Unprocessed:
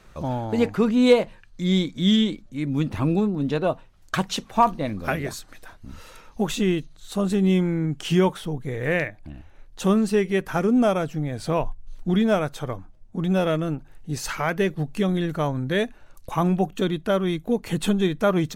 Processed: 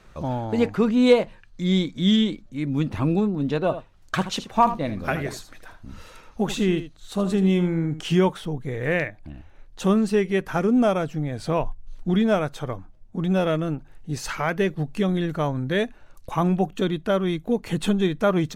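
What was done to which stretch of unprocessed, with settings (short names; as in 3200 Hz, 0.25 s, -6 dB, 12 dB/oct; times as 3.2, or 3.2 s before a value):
3.61–8 echo 78 ms -12 dB
whole clip: high shelf 9100 Hz -7 dB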